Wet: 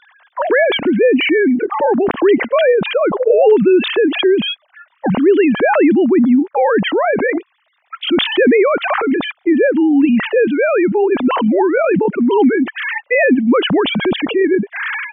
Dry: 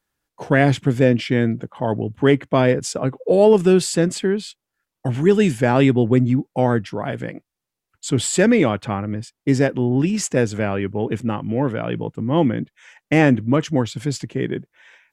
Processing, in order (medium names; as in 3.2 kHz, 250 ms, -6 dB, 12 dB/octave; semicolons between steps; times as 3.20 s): formants replaced by sine waves; level flattener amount 70%; trim -2 dB